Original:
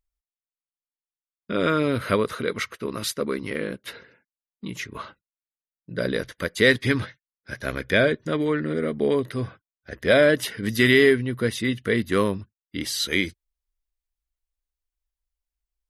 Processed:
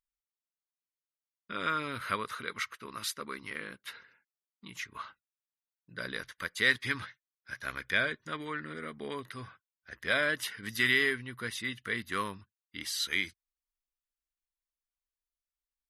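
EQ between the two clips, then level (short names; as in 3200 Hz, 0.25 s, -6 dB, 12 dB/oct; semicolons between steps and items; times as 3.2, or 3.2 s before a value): resonant low shelf 770 Hz -9.5 dB, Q 1.5; -7.0 dB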